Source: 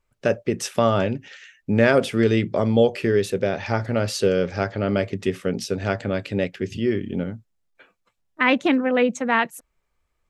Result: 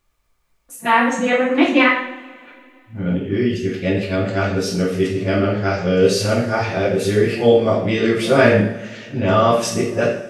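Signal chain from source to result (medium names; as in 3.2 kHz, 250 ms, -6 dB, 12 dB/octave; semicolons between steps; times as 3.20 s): reverse the whole clip; two-slope reverb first 0.58 s, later 2.4 s, from -21 dB, DRR -5.5 dB; word length cut 12-bit, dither none; trim -1 dB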